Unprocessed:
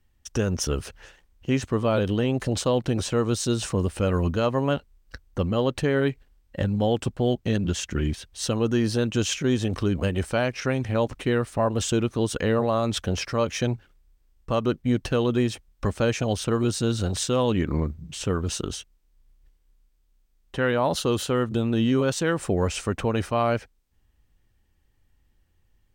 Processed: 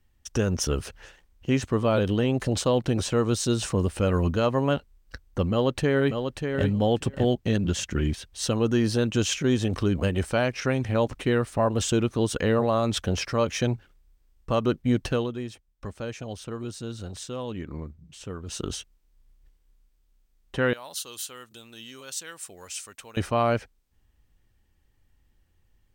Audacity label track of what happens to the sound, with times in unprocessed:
5.510000	6.650000	echo throw 0.59 s, feedback 10%, level -6 dB
15.000000	18.780000	dip -11 dB, fades 0.32 s equal-power
20.730000	23.170000	pre-emphasis coefficient 0.97

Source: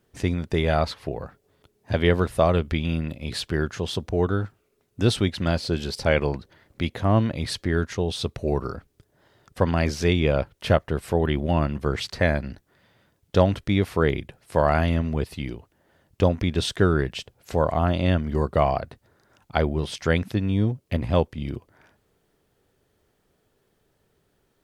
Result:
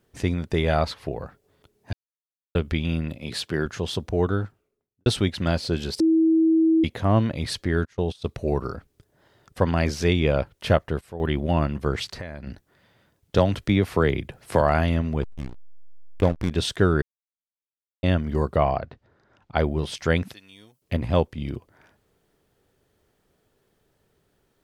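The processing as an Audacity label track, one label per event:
1.930000	2.550000	mute
3.170000	3.660000	HPF 120 Hz
4.300000	5.060000	studio fade out
6.000000	6.840000	bleep 323 Hz -15 dBFS
7.850000	8.290000	gate -29 dBFS, range -21 dB
10.710000	11.500000	dip -13.5 dB, fades 0.30 s logarithmic
12.040000	12.470000	compressor 8:1, threshold -31 dBFS
13.380000	14.610000	three-band squash depth 70%
15.220000	16.510000	backlash play -21 dBFS
17.020000	18.030000	mute
18.560000	19.580000	air absorption 150 m
20.330000	20.820000	differentiator

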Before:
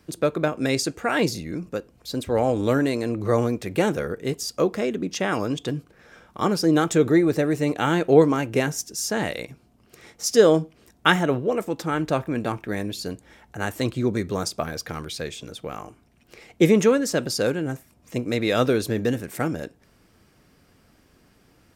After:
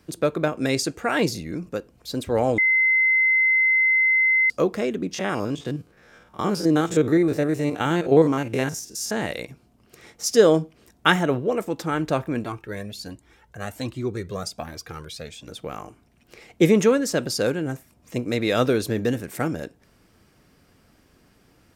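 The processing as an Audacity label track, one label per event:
2.580000	4.500000	bleep 2060 Hz -15.5 dBFS
5.140000	9.310000	stepped spectrum every 50 ms
12.440000	15.480000	cascading flanger rising 1.3 Hz

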